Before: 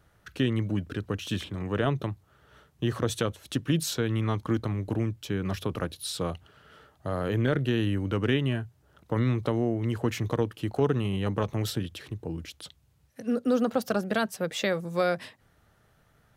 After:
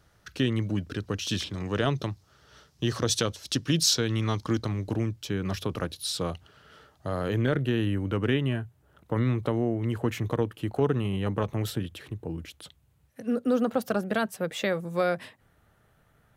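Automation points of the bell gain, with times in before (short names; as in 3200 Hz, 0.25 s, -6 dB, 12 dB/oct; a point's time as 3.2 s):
bell 5200 Hz 0.98 oct
0.86 s +7 dB
1.53 s +14.5 dB
4.45 s +14.5 dB
5.12 s +5 dB
7.28 s +5 dB
7.7 s -5 dB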